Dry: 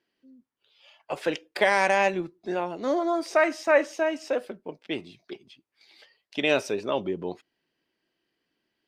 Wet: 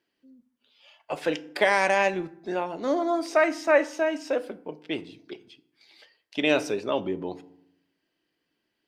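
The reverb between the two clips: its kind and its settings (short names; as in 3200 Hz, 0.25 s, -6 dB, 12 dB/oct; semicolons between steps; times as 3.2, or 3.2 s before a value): FDN reverb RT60 0.72 s, low-frequency decay 1.45×, high-frequency decay 0.6×, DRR 14 dB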